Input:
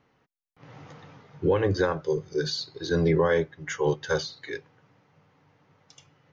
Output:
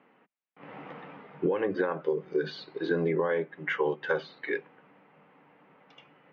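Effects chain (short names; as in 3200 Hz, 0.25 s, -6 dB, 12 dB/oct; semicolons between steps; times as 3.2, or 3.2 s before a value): Chebyshev band-pass 200–2700 Hz, order 3; compressor 12:1, threshold -29 dBFS, peak gain reduction 11 dB; gain +5.5 dB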